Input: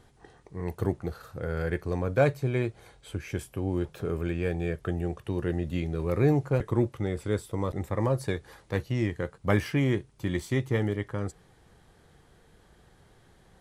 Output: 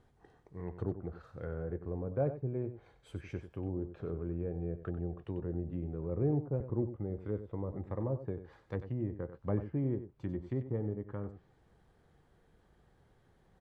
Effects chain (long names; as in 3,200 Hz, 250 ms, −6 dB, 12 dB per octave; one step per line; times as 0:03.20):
treble cut that deepens with the level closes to 650 Hz, closed at −25 dBFS
single-tap delay 94 ms −11.5 dB
one half of a high-frequency compander decoder only
level −8 dB